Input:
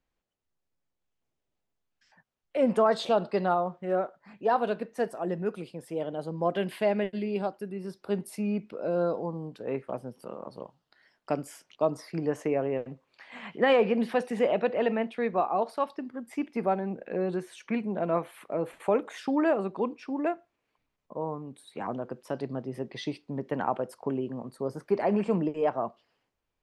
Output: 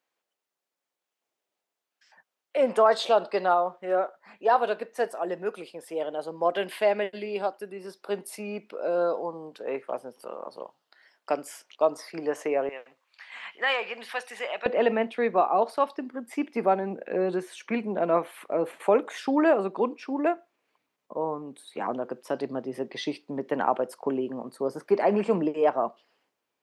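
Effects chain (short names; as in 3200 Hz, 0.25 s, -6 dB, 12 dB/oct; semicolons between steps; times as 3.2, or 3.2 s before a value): HPF 450 Hz 12 dB/oct, from 12.69 s 1200 Hz, from 14.66 s 260 Hz; gain +4.5 dB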